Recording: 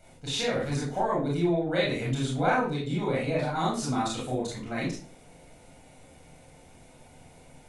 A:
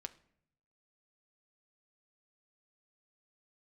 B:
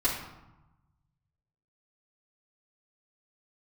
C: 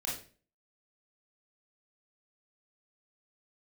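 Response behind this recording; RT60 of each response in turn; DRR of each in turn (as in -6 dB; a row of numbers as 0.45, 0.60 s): C; 0.65, 1.0, 0.40 s; 7.5, -11.0, -5.5 dB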